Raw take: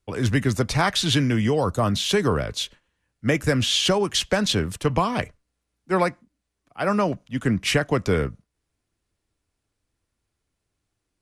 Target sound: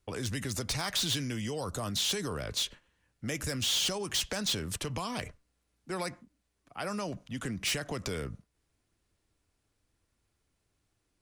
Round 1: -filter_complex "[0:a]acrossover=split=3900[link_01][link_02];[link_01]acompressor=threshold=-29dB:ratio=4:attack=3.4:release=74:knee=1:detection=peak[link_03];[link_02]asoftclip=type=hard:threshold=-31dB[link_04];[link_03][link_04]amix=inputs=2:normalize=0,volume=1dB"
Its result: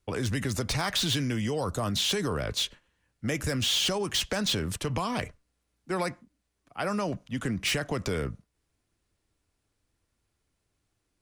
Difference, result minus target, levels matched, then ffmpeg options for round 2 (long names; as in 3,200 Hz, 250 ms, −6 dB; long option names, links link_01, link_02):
downward compressor: peak gain reduction −6 dB
-filter_complex "[0:a]acrossover=split=3900[link_01][link_02];[link_01]acompressor=threshold=-37dB:ratio=4:attack=3.4:release=74:knee=1:detection=peak[link_03];[link_02]asoftclip=type=hard:threshold=-31dB[link_04];[link_03][link_04]amix=inputs=2:normalize=0,volume=1dB"